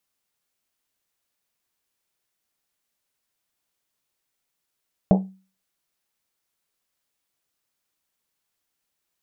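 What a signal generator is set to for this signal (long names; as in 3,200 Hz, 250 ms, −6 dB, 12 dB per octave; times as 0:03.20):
drum after Risset, pitch 190 Hz, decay 0.37 s, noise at 610 Hz, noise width 430 Hz, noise 25%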